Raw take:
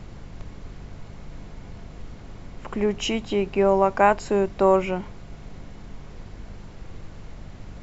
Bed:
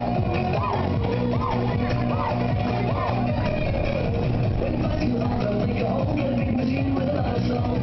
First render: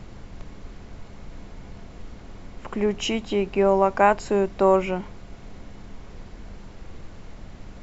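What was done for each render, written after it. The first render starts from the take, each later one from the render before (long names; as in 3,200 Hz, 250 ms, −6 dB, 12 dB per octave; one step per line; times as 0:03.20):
hum removal 50 Hz, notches 3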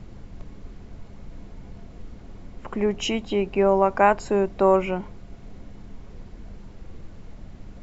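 broadband denoise 6 dB, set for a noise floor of −43 dBFS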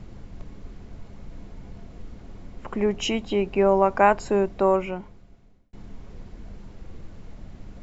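0:04.38–0:05.73: fade out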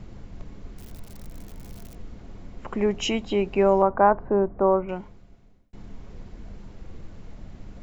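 0:00.77–0:01.95: spike at every zero crossing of −34.5 dBFS
0:03.82–0:04.89: low-pass filter 1,400 Hz 24 dB per octave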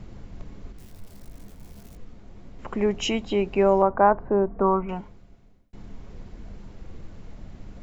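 0:00.72–0:02.59: micro pitch shift up and down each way 57 cents
0:04.47–0:05.00: comb filter 4.4 ms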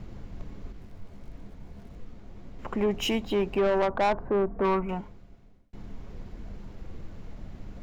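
running median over 5 samples
soft clipping −19 dBFS, distortion −8 dB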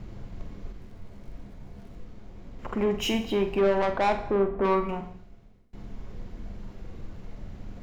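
on a send: flutter between parallel walls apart 7.8 metres, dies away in 0.29 s
on the sum: reverb whose tail is shaped and stops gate 290 ms falling, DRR 11 dB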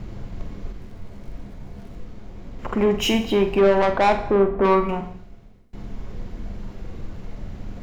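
level +6.5 dB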